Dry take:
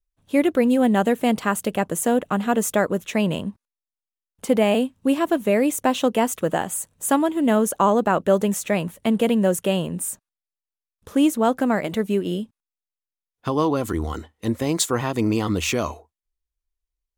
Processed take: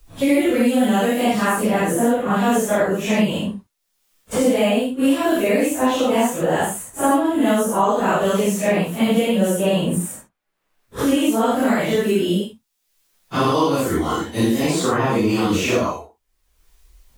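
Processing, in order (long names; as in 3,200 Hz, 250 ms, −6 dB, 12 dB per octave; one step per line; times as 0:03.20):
random phases in long frames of 200 ms
multiband upward and downward compressor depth 100%
level +2 dB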